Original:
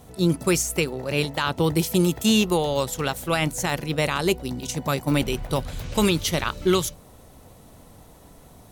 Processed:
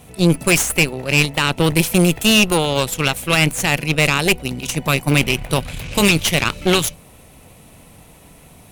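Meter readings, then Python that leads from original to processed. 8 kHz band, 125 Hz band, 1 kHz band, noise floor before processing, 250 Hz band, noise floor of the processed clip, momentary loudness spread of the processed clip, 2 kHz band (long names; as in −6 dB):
+7.5 dB, +7.0 dB, +5.0 dB, −49 dBFS, +4.5 dB, −46 dBFS, 7 LU, +11.5 dB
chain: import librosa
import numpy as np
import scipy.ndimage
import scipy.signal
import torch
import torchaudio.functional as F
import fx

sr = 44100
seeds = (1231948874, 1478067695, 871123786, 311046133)

y = fx.graphic_eq_15(x, sr, hz=(160, 2500, 10000), db=(4, 12, 7))
y = fx.cheby_harmonics(y, sr, harmonics=(6,), levels_db=(-13,), full_scale_db=-1.5)
y = 10.0 ** (-4.0 / 20.0) * np.tanh(y / 10.0 ** (-4.0 / 20.0))
y = F.gain(torch.from_numpy(y), 2.0).numpy()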